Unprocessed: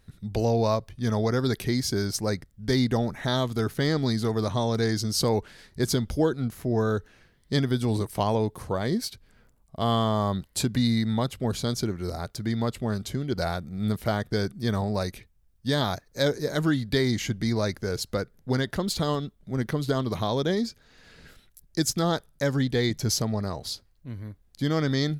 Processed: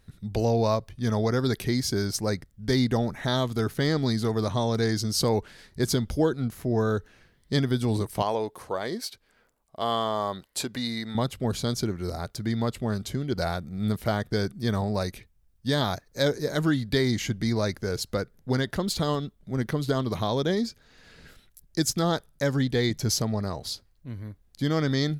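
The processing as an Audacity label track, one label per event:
8.220000	11.150000	tone controls bass -15 dB, treble -2 dB

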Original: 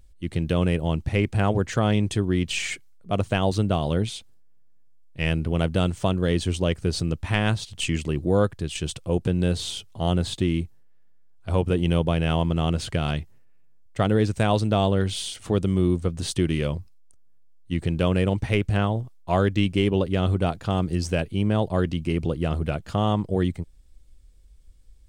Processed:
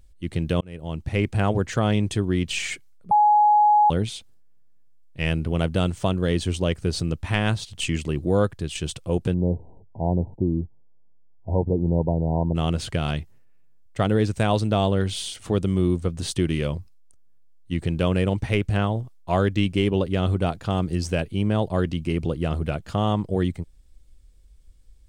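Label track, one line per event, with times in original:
0.610000	1.230000	fade in
3.110000	3.900000	bleep 838 Hz -13 dBFS
9.340000	12.550000	brick-wall FIR low-pass 1 kHz

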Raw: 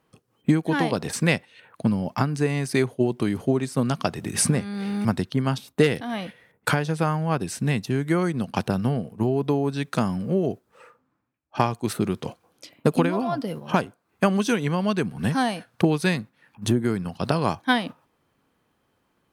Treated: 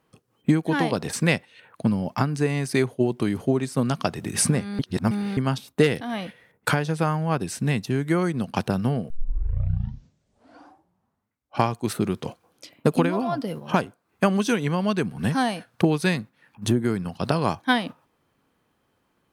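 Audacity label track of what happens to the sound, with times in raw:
4.790000	5.370000	reverse
9.100000	9.100000	tape start 2.60 s

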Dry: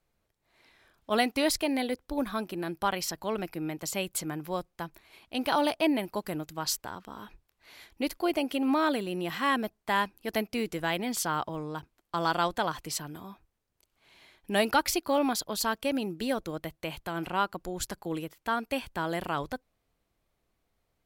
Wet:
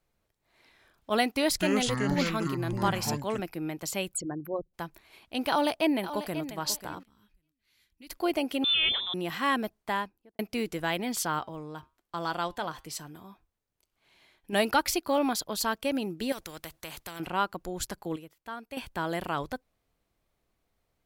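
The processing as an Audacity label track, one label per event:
1.300000	3.400000	ever faster or slower copies 213 ms, each echo -7 st, echoes 2
4.140000	4.740000	resonances exaggerated exponent 3
5.490000	6.440000	echo throw 540 ms, feedback 20%, level -12 dB
7.030000	8.100000	amplifier tone stack bass-middle-treble 6-0-2
8.640000	9.140000	frequency inversion carrier 3.8 kHz
9.760000	10.390000	studio fade out
11.390000	14.530000	flange 1.1 Hz, delay 5.4 ms, depth 1.7 ms, regen -85%
16.320000	17.200000	spectrum-flattening compressor 2:1
18.160000	18.770000	gain -10 dB

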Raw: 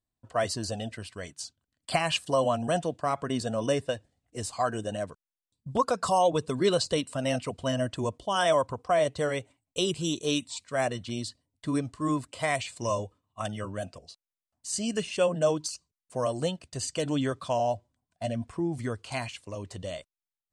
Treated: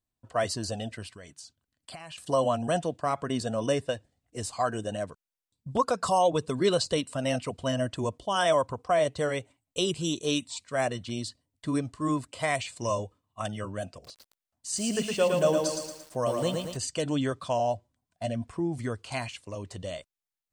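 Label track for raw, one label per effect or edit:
1.130000	2.180000	compression 4:1, threshold -43 dBFS
13.910000	16.770000	bit-crushed delay 113 ms, feedback 55%, word length 8-bit, level -3.5 dB

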